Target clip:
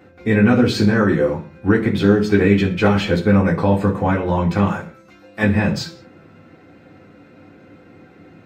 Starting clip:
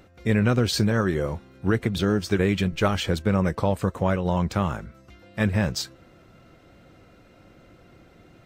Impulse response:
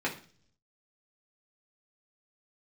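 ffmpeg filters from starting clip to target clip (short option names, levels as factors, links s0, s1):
-filter_complex "[0:a]asettb=1/sr,asplit=3[s0][s1][s2];[s0]atrim=end=4.674[s3];[s1]atrim=start=4.67:end=5.43,asetpts=PTS-STARTPTS,afade=t=in:d=0.004:c=qsin,afade=t=out:st=0.756:d=0.004:c=qsin,bass=f=250:g=-11,treble=f=4000:g=6[s4];[s2]atrim=start=5.426[s5];[s3][s4]acrossfade=d=0.004:c1=hsin:c2=qsin[s6];[s6][s5]acrossfade=d=0.004:c1=qsin:c2=hsin[s7];[1:a]atrim=start_sample=2205,afade=t=out:st=0.28:d=0.01,atrim=end_sample=12789[s8];[s7][s8]afir=irnorm=-1:irlink=0,volume=0.891"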